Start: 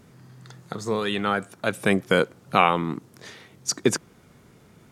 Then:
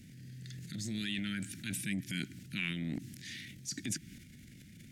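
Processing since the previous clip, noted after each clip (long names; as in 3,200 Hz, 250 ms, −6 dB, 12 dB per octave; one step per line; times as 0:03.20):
inverse Chebyshev band-stop filter 450–1,200 Hz, stop band 40 dB
downward compressor 3 to 1, threshold −36 dBFS, peak gain reduction 13 dB
transient designer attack −6 dB, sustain +9 dB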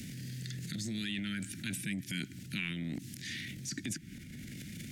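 multiband upward and downward compressor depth 70%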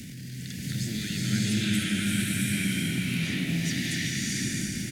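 brickwall limiter −29 dBFS, peak gain reduction 7.5 dB
single-tap delay 380 ms −6.5 dB
slow-attack reverb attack 690 ms, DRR −8 dB
level +3 dB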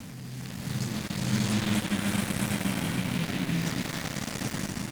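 gap after every zero crossing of 0.24 ms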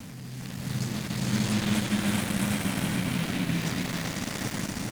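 single-tap delay 414 ms −6 dB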